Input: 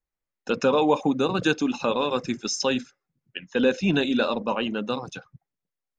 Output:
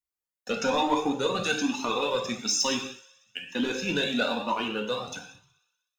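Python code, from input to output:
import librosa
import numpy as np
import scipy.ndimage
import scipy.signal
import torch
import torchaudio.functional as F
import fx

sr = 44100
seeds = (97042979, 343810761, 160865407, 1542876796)

y = fx.highpass(x, sr, hz=160.0, slope=6)
y = fx.high_shelf(y, sr, hz=5700.0, db=11.5)
y = fx.leveller(y, sr, passes=1)
y = fx.echo_thinned(y, sr, ms=62, feedback_pct=72, hz=440.0, wet_db=-19.0)
y = fx.rev_gated(y, sr, seeds[0], gate_ms=240, shape='falling', drr_db=2.0)
y = fx.comb_cascade(y, sr, direction='rising', hz=1.1)
y = y * 10.0 ** (-3.0 / 20.0)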